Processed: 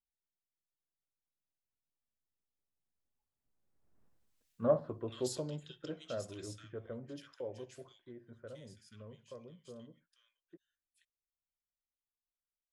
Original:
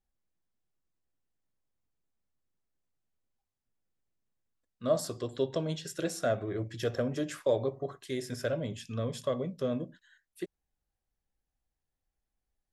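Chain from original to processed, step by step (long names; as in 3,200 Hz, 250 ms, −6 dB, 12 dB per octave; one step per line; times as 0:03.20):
source passing by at 0:04.02, 20 m/s, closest 2.2 metres
multiband delay without the direct sound lows, highs 480 ms, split 1,800 Hz
highs frequency-modulated by the lows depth 0.16 ms
level +14.5 dB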